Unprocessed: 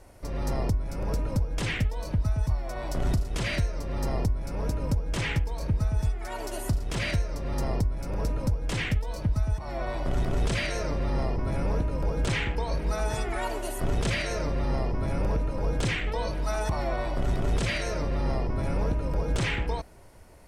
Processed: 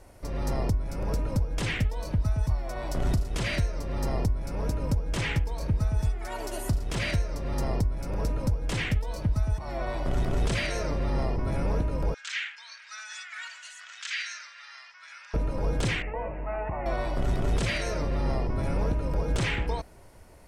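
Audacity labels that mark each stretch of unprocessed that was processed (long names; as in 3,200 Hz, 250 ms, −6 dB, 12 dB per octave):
12.140000	15.340000	elliptic band-pass filter 1,500–7,200 Hz, stop band 60 dB
16.020000	16.860000	Chebyshev low-pass with heavy ripple 2,800 Hz, ripple 6 dB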